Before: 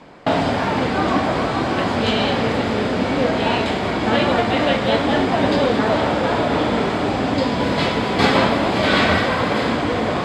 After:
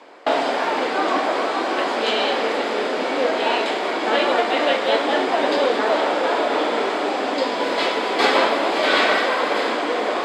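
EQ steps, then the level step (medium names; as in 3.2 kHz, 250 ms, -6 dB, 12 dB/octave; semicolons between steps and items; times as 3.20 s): high-pass 330 Hz 24 dB/octave; 0.0 dB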